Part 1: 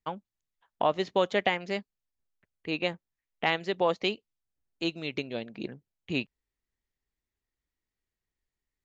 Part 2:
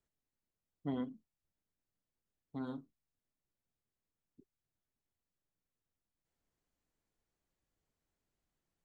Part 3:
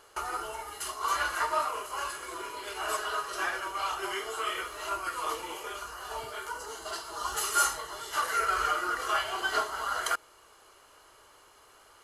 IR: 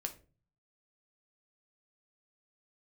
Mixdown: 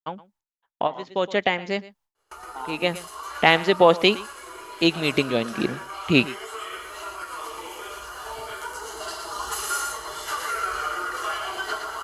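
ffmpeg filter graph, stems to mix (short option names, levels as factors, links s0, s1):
-filter_complex "[0:a]volume=1.33,asplit=2[s0][s1];[s1]volume=0.106[s2];[1:a]highpass=f=890:t=q:w=6.8,volume=1.12,asplit=2[s3][s4];[2:a]acompressor=threshold=0.0158:ratio=2,adelay=2150,volume=0.316,asplit=2[s5][s6];[s6]volume=0.596[s7];[s4]apad=whole_len=389888[s8];[s0][s8]sidechaincompress=threshold=0.00355:ratio=4:attack=33:release=292[s9];[s2][s7]amix=inputs=2:normalize=0,aecho=0:1:117:1[s10];[s9][s3][s5][s10]amix=inputs=4:normalize=0,agate=range=0.0224:threshold=0.00126:ratio=3:detection=peak,dynaudnorm=f=210:g=21:m=5.96"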